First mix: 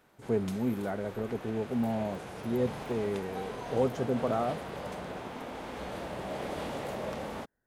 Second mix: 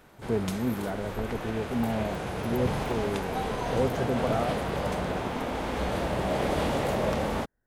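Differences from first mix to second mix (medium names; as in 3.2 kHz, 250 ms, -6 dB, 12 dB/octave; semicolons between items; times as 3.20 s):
background +8.5 dB; master: add bass shelf 83 Hz +11 dB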